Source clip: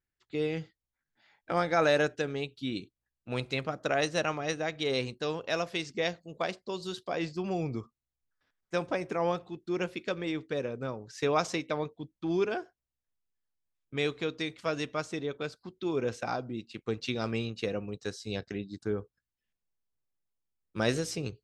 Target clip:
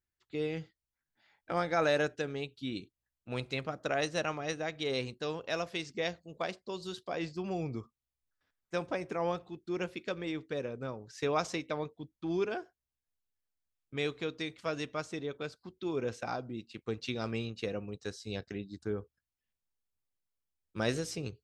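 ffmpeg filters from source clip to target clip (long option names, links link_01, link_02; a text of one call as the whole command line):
ffmpeg -i in.wav -af "equalizer=frequency=76:width=4.4:gain=7.5,volume=-3.5dB" out.wav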